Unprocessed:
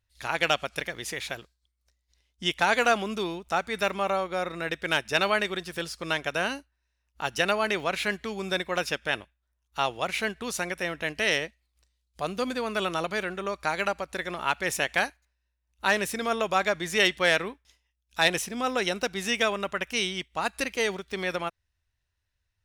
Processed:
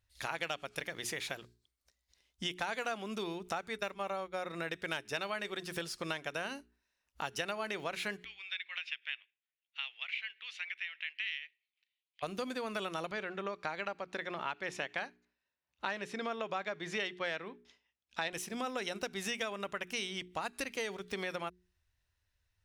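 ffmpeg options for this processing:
-filter_complex "[0:a]asplit=3[a][b][c];[a]afade=t=out:st=3.74:d=0.02[d];[b]agate=range=-33dB:threshold=-29dB:ratio=3:release=100:detection=peak,afade=t=in:st=3.74:d=0.02,afade=t=out:st=4.37:d=0.02[e];[c]afade=t=in:st=4.37:d=0.02[f];[d][e][f]amix=inputs=3:normalize=0,asplit=3[g][h][i];[g]afade=t=out:st=8.23:d=0.02[j];[h]asuperpass=centerf=2600:order=4:qfactor=1.9,afade=t=in:st=8.23:d=0.02,afade=t=out:st=12.22:d=0.02[k];[i]afade=t=in:st=12.22:d=0.02[l];[j][k][l]amix=inputs=3:normalize=0,asettb=1/sr,asplit=3[m][n][o];[m]atrim=end=13.114[p];[n]atrim=start=13.11:end=18.33,asetpts=PTS-STARTPTS,afade=t=in:d=0.004:c=qsin,afade=t=out:st=5.216:d=0.004:c=qsin,highpass=110,lowpass=4.4k[q];[o]atrim=start=18.326[r];[p][q]acrossfade=d=0.004:c1=hsin:c2=qsin[s];[s][r]acrossfade=d=0.004:c1=qsin:c2=hsin,bandreject=f=60:t=h:w=6,bandreject=f=120:t=h:w=6,bandreject=f=180:t=h:w=6,bandreject=f=240:t=h:w=6,bandreject=f=300:t=h:w=6,bandreject=f=360:t=h:w=6,bandreject=f=420:t=h:w=6,acompressor=threshold=-36dB:ratio=4"

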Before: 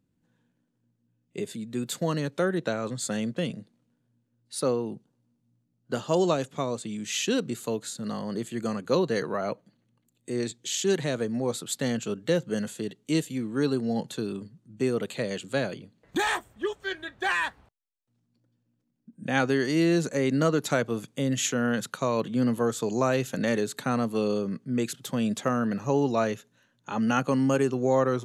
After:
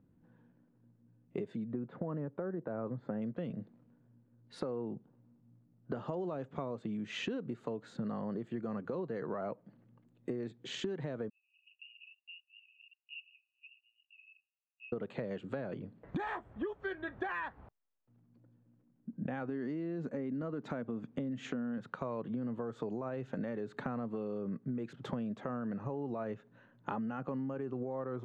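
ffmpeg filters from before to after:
-filter_complex "[0:a]asettb=1/sr,asplit=3[a][b][c];[a]atrim=end=1.724[d];[b]atrim=start=1.72:end=3.22,asetpts=PTS-STARTPTS,afade=t=in:d=0.004:c=qsin,afade=t=out:st=1.496:d=0.004:c=qsin,lowpass=1.3k[e];[c]atrim=start=3.216[f];[d][e]acrossfade=d=0.004:c1=hsin:c2=qsin[g];[g][f]acrossfade=d=0.004:c1=qsin:c2=hsin,asplit=3[h][i][j];[h]afade=t=out:st=11.28:d=0.02[k];[i]asuperpass=centerf=2700:order=12:qfactor=6.8,afade=t=in:st=11.28:d=0.02,afade=t=out:st=14.92:d=0.02[l];[j]afade=t=in:st=14.92:d=0.02[m];[k][l][m]amix=inputs=3:normalize=0,asettb=1/sr,asplit=3[n][o][p];[n]atrim=end=19.484[q];[o]atrim=start=19.48:end=21.78,asetpts=PTS-STARTPTS,afade=t=in:d=0.004:c=qsin,afade=t=out:st=2.296:d=0.004:c=qsin,equalizer=f=240:t=o:w=0.45:g=8.5[r];[p]atrim=start=21.776[s];[q][r]acrossfade=d=0.004:c1=hsin:c2=qsin[t];[t][s]acrossfade=d=0.004:c1=qsin:c2=hsin,lowpass=1.4k,alimiter=limit=-23dB:level=0:latency=1:release=107,acompressor=threshold=-41dB:ratio=16,volume=6.5dB"

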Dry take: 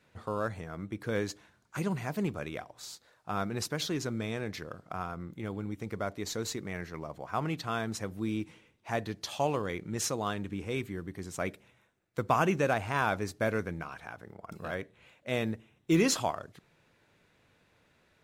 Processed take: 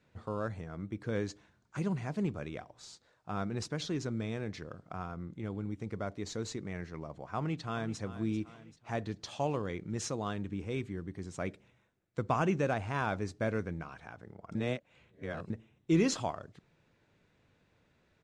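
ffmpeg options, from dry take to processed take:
-filter_complex "[0:a]asplit=2[a][b];[b]afade=t=in:st=7.37:d=0.01,afade=t=out:st=7.98:d=0.01,aecho=0:1:390|780|1170|1560|1950:0.223872|0.111936|0.055968|0.027984|0.013992[c];[a][c]amix=inputs=2:normalize=0,asplit=3[d][e][f];[d]atrim=end=14.552[g];[e]atrim=start=14.548:end=15.502,asetpts=PTS-STARTPTS,areverse[h];[f]atrim=start=15.498[i];[g][h]acrossfade=d=0.004:c1=hsin:c2=hsin[j];[j][i]acrossfade=d=0.004:c1=hsin:c2=hsin,lowpass=f=8.3k:w=0.5412,lowpass=f=8.3k:w=1.3066,lowshelf=f=430:g=6.5,volume=-6dB"

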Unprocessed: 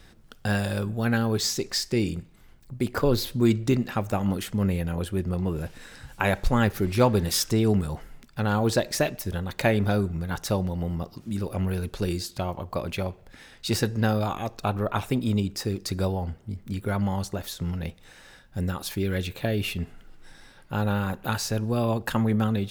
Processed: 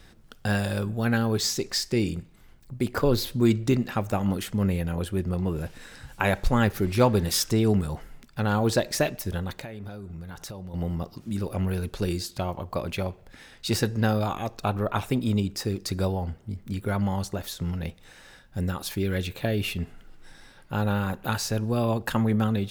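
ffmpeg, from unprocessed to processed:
-filter_complex "[0:a]asettb=1/sr,asplit=3[a][b][c];[a]atrim=end=9.544[d];[b]atrim=start=9.54:end=10.74,asetpts=PTS-STARTPTS,afade=t=in:d=0.004:c=qsin,afade=t=out:st=1.196:d=0.004:c=qsin,acompressor=threshold=-35dB:ratio=8:attack=3.2:release=140:knee=1:detection=peak[e];[c]atrim=start=10.736[f];[d][e]acrossfade=d=0.004:c1=hsin:c2=qsin[g];[g][f]acrossfade=d=0.004:c1=qsin:c2=hsin"

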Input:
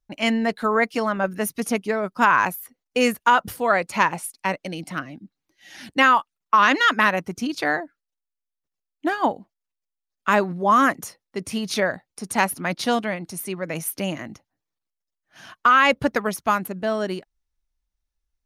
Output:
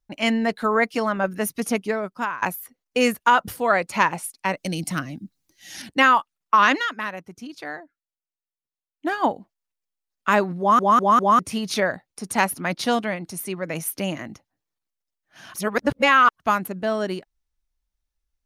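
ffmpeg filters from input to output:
-filter_complex "[0:a]asettb=1/sr,asplit=3[a][b][c];[a]atrim=end=4.574[d];[b]atrim=start=4.57:end=5.82,asetpts=PTS-STARTPTS,afade=t=in:d=0.004:c=qsin,afade=t=out:st=1.246:d=0.004:c=qsin,bass=f=250:g=8,treble=f=4k:g=12[e];[c]atrim=start=5.816[f];[d][e]acrossfade=d=0.004:c1=hsin:c2=qsin[g];[g][f]acrossfade=d=0.004:c1=qsin:c2=hsin,asplit=10[h][i][j][k][l][m][n][o][p][q];[h]atrim=end=2.42,asetpts=PTS-STARTPTS,afade=t=out:st=1.87:d=0.55:silence=0.0707946[r];[i]atrim=start=2.42:end=6.89,asetpts=PTS-STARTPTS,afade=t=in:d=0.004:c=hsin:silence=0.0707946,afade=t=out:st=4.27:d=0.2:silence=0.281838[s];[j]atrim=start=6.89:end=8.94,asetpts=PTS-STARTPTS,volume=-11dB[t];[k]atrim=start=8.94:end=10.792,asetpts=PTS-STARTPTS,afade=t=in:d=0.2:silence=0.281838[u];[l]atrim=start=10.588:end=10.792[v];[m]atrim=start=10.588:end=10.792[w];[n]atrim=start=10.588:end=10.792[x];[o]atrim=start=11.388:end=15.542[y];[p]atrim=start=15.538:end=16.402,asetpts=PTS-STARTPTS,areverse[z];[q]atrim=start=16.398[aa];[r][s][t][u]concat=n=4:v=0:a=1[ab];[ab][v]acrossfade=d=0.004:c1=hsin:c2=hsin[ac];[ac][w]acrossfade=d=0.004:c1=hsin:c2=hsin[ad];[ad][x]acrossfade=d=0.004:c1=hsin:c2=hsin[ae];[ae][y]acrossfade=d=0.004:c1=hsin:c2=hsin[af];[af][z]acrossfade=d=0.004:c1=hsin:c2=hsin[ag];[ag][aa]acrossfade=d=0.004:c1=hsin:c2=hsin"

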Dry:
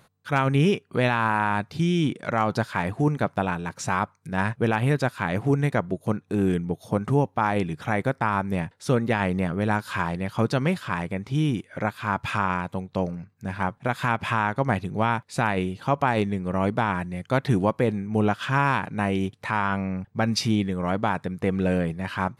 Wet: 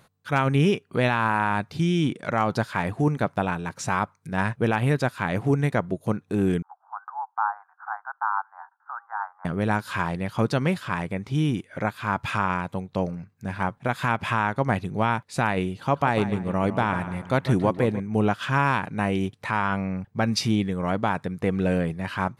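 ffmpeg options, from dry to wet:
-filter_complex "[0:a]asettb=1/sr,asplit=3[a][b][c];[a]atrim=end=6.624[d];[b]atrim=start=6.62:end=9.45,asetpts=PTS-STARTPTS,afade=t=in:d=0.004:c=qsin,afade=t=out:st=2.826:d=0.004:c=qsin,asuperpass=centerf=1100:order=12:qfactor=1.4[e];[c]atrim=start=9.446[f];[d][e]acrossfade=d=0.004:c1=hsin:c2=qsin[g];[g][f]acrossfade=d=0.004:c1=qsin:c2=hsin,asettb=1/sr,asplit=3[h][i][j];[h]atrim=end=15.784[k];[i]atrim=start=15.78:end=18,asetpts=PTS-STARTPTS,afade=t=in:d=0.004:c=qsin,afade=t=out:st=2.216:d=0.004:c=qsin,asplit=2[l][m];[m]adelay=148,lowpass=f=4.6k:p=1,volume=-12dB,asplit=2[n][o];[o]adelay=148,lowpass=f=4.6k:p=1,volume=0.43,asplit=2[p][q];[q]adelay=148,lowpass=f=4.6k:p=1,volume=0.43,asplit=2[r][s];[s]adelay=148,lowpass=f=4.6k:p=1,volume=0.43[t];[l][n][p][r][t]amix=inputs=5:normalize=0,atrim=end_sample=97902[u];[j]atrim=start=17.996[v];[k][u]acrossfade=d=0.004:c1=hsin:c2=qsin[w];[w][v]acrossfade=d=0.004:c1=qsin:c2=hsin"

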